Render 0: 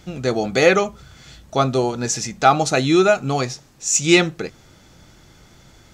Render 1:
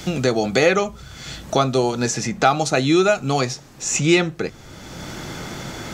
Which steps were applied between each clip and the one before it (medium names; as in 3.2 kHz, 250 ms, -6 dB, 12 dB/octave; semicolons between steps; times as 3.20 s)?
three bands compressed up and down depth 70%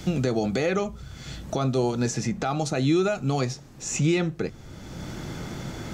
peak limiter -10 dBFS, peak gain reduction 8 dB; bass shelf 390 Hz +8.5 dB; trim -8 dB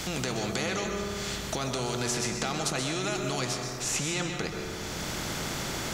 peak limiter -18 dBFS, peak gain reduction 5 dB; reverberation RT60 1.2 s, pre-delay 121 ms, DRR 6.5 dB; spectrum-flattening compressor 2:1; trim -1.5 dB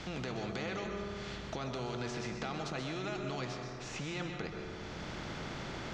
distance through air 180 m; trim -6.5 dB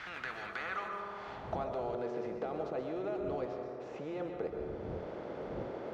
block-companded coder 5-bit; wind noise 81 Hz -36 dBFS; band-pass sweep 1.6 kHz -> 500 Hz, 0.46–2.14 s; trim +8.5 dB